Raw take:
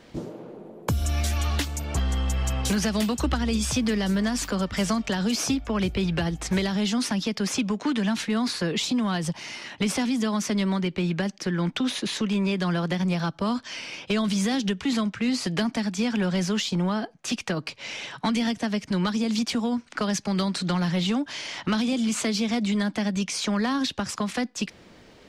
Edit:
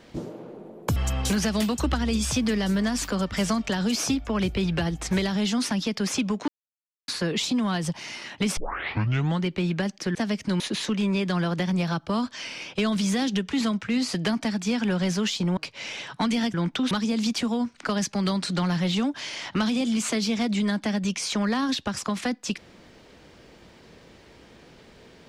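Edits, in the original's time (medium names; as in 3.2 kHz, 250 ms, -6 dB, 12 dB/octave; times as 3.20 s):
0.96–2.36 s: delete
7.88–8.48 s: mute
9.97 s: tape start 0.87 s
11.55–11.92 s: swap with 18.58–19.03 s
16.89–17.61 s: delete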